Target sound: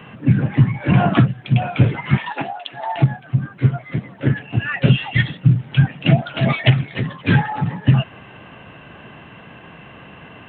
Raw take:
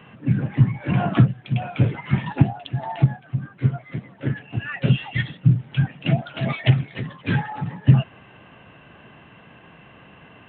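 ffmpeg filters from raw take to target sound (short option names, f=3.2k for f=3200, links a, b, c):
-filter_complex "[0:a]asettb=1/sr,asplit=3[a][b][c];[a]atrim=end=2.174[d];[b]atrim=start=2.17:end=2.96,asetpts=PTS-STARTPTS,afade=t=in:d=0.004:c=qsin,afade=t=out:st=0.786:d=0.004:c=qsin,highpass=610[e];[c]atrim=start=2.956[f];[d][e]acrossfade=d=0.004:c1=hsin:c2=qsin[g];[g][f]acrossfade=d=0.004:c1=qsin:c2=hsin,acrossover=split=960[h][i];[h]alimiter=limit=-10.5dB:level=0:latency=1:release=242[j];[j][i]amix=inputs=2:normalize=0,volume=7dB"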